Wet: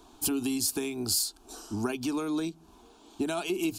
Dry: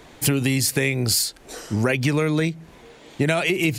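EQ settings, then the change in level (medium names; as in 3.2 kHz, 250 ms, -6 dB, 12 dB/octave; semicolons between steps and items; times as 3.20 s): static phaser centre 530 Hz, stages 6; -5.5 dB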